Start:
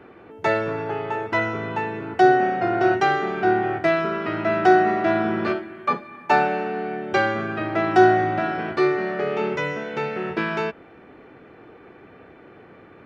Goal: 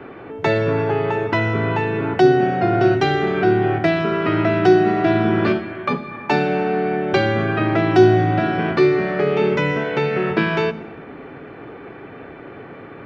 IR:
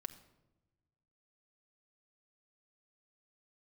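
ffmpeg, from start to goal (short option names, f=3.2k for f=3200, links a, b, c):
-filter_complex "[0:a]acrossover=split=380|3000[a][b][c];[b]acompressor=threshold=-31dB:ratio=6[d];[a][d][c]amix=inputs=3:normalize=0,asplit=2[e][f];[1:a]atrim=start_sample=2205,asetrate=29988,aresample=44100,lowpass=5.1k[g];[f][g]afir=irnorm=-1:irlink=0,volume=5dB[h];[e][h]amix=inputs=2:normalize=0,volume=2dB"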